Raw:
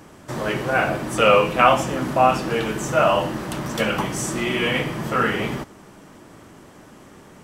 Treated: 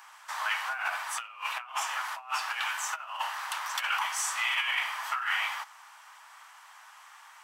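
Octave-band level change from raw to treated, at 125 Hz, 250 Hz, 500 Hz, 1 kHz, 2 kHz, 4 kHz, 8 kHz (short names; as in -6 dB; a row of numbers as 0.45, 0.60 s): under -40 dB, under -40 dB, -32.5 dB, -11.5 dB, -5.5 dB, -5.0 dB, -3.0 dB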